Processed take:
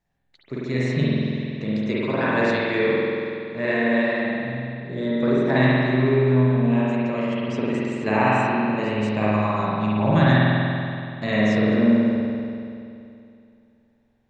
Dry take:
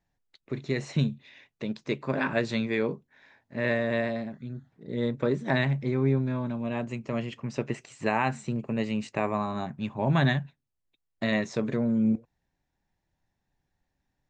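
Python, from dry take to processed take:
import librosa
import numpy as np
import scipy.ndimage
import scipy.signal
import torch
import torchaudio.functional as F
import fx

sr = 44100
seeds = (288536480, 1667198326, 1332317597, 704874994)

y = fx.rev_spring(x, sr, rt60_s=2.6, pass_ms=(47,), chirp_ms=25, drr_db=-7.5)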